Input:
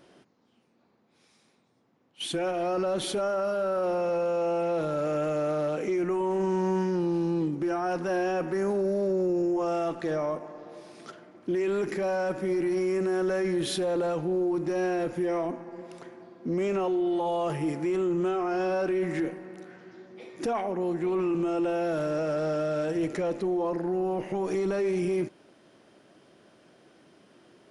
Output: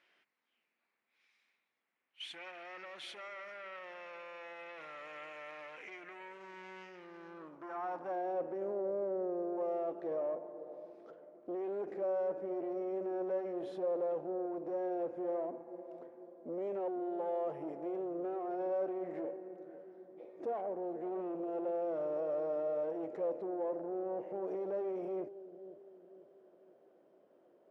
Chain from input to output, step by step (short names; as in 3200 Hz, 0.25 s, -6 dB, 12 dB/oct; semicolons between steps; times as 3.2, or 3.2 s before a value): tube stage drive 27 dB, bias 0.5; analogue delay 0.499 s, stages 2048, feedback 45%, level -13 dB; band-pass sweep 2200 Hz -> 550 Hz, 6.94–8.44; gain -1 dB